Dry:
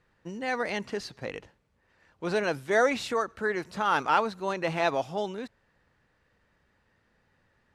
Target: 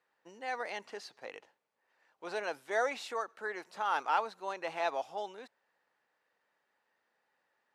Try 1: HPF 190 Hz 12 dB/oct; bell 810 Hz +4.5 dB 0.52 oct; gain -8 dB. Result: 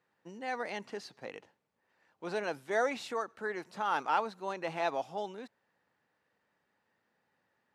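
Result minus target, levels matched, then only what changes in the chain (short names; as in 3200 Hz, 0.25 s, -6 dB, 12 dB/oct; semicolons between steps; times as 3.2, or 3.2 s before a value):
250 Hz band +7.0 dB
change: HPF 450 Hz 12 dB/oct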